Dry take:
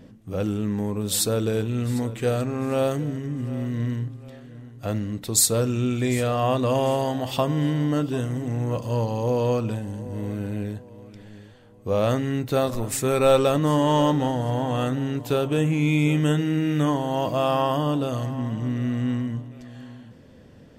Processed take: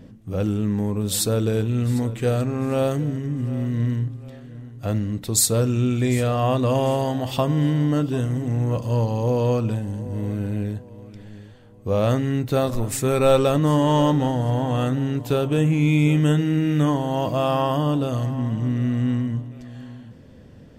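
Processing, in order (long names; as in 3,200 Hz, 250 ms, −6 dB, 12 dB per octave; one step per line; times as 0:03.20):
low-shelf EQ 200 Hz +6 dB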